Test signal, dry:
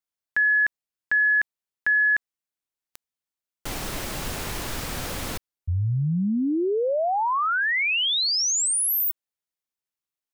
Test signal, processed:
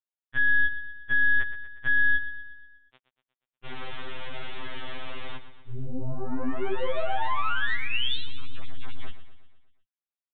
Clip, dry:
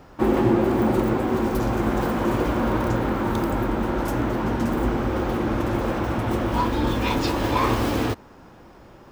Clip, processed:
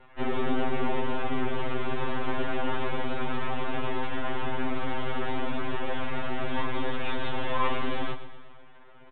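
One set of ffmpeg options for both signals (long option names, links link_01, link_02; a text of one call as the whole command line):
ffmpeg -i in.wav -filter_complex "[0:a]highpass=frequency=320:poles=1,asplit=2[link_01][link_02];[link_02]acompressor=threshold=-30dB:ratio=6:attack=0.66:knee=6,volume=2dB[link_03];[link_01][link_03]amix=inputs=2:normalize=0,aeval=exprs='val(0)*sin(2*PI*27*n/s)':channel_layout=same,asoftclip=type=tanh:threshold=-18.5dB,aeval=exprs='0.119*(cos(1*acos(clip(val(0)/0.119,-1,1)))-cos(1*PI/2))+0.0299*(cos(3*acos(clip(val(0)/0.119,-1,1)))-cos(3*PI/2))+0.0299*(cos(4*acos(clip(val(0)/0.119,-1,1)))-cos(4*PI/2))+0.0133*(cos(6*acos(clip(val(0)/0.119,-1,1)))-cos(6*PI/2))+0.0211*(cos(8*acos(clip(val(0)/0.119,-1,1)))-cos(8*PI/2))':channel_layout=same,aecho=1:1:120|240|360|480|600|720:0.237|0.128|0.0691|0.0373|0.0202|0.0109,aresample=8000,aresample=44100,afftfilt=real='re*2.45*eq(mod(b,6),0)':imag='im*2.45*eq(mod(b,6),0)':win_size=2048:overlap=0.75" out.wav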